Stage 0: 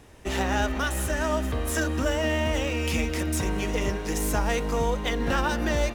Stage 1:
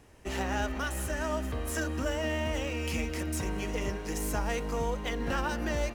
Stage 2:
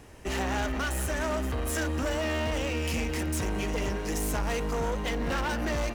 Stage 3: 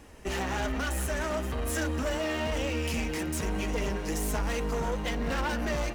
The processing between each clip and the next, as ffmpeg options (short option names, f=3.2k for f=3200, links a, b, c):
-af "bandreject=f=3.6k:w=12,volume=-6dB"
-af "asoftclip=type=tanh:threshold=-32.5dB,volume=7dB"
-af "flanger=delay=3.4:depth=2.9:regen=-40:speed=1.1:shape=triangular,volume=3dB"